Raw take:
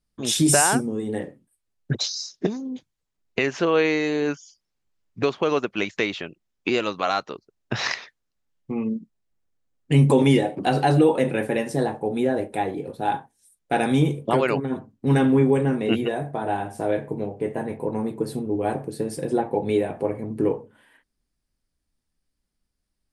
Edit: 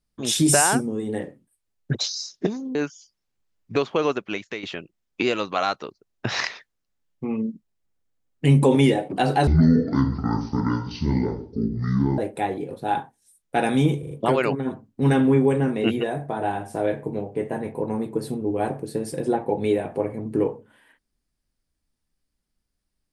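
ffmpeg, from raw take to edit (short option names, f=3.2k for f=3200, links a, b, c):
-filter_complex "[0:a]asplit=8[a][b][c][d][e][f][g][h];[a]atrim=end=2.752[i];[b]atrim=start=4.218:end=6.1,asetpts=PTS-STARTPTS,afade=t=out:st=1.312:d=0.57:silence=0.266073[j];[c]atrim=start=6.1:end=10.944,asetpts=PTS-STARTPTS,afade=t=in:d=0.004:c=hsin:silence=0.266073[k];[d]atrim=start=10.94:end=12.35,asetpts=PTS-STARTPTS,asetrate=22932,aresample=44100[l];[e]atrim=start=12.346:end=14.202[m];[f]atrim=start=14.158:end=14.202[n];[g]atrim=start=14.158:end=14.202[o];[h]atrim=start=14.158[p];[j][k]concat=n=2:v=0:a=1[q];[i][q]acrossfade=d=0.004:c1=hsin:c2=hsin[r];[r][l]acrossfade=d=0.004:c1=hsin:c2=hsin[s];[s][m]acrossfade=d=0.004:c1=hsin:c2=hsin[t];[t][n]acrossfade=d=0.004:c1=hsin:c2=hsin[u];[u][o]acrossfade=d=0.004:c1=hsin:c2=hsin[v];[v][p]acrossfade=d=0.004:c1=hsin:c2=hsin"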